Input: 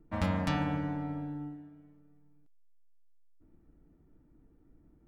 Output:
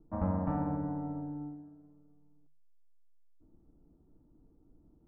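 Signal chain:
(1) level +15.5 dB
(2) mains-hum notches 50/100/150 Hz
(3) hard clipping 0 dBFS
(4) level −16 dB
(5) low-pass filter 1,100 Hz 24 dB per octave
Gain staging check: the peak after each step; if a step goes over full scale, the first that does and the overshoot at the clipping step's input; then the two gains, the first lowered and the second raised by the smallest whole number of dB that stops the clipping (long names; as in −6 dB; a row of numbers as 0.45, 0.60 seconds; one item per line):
−1.0, −1.5, −1.5, −17.5, −19.5 dBFS
no step passes full scale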